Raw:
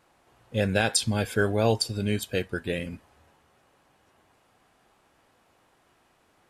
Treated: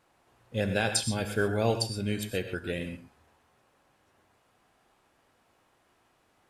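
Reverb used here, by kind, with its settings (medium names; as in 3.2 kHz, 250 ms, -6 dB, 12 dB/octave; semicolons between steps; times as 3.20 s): gated-style reverb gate 150 ms rising, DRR 7.5 dB; trim -4 dB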